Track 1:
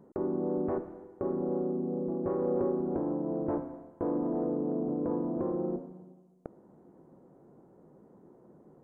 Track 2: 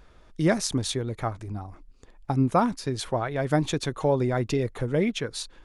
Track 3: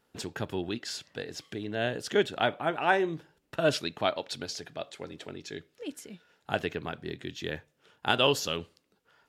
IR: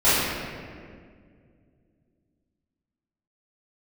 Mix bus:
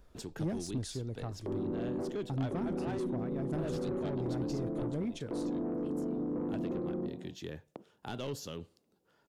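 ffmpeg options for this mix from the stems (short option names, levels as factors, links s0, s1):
-filter_complex "[0:a]agate=range=0.0794:threshold=0.00398:ratio=16:detection=peak,highpass=150,adelay=1300,volume=1.33[s0];[1:a]volume=0.473[s1];[2:a]volume=0.708[s2];[s0][s1][s2]amix=inputs=3:normalize=0,equalizer=f=2100:t=o:w=2.1:g=-7.5,asoftclip=type=tanh:threshold=0.0501,acrossover=split=310[s3][s4];[s4]acompressor=threshold=0.00631:ratio=2.5[s5];[s3][s5]amix=inputs=2:normalize=0"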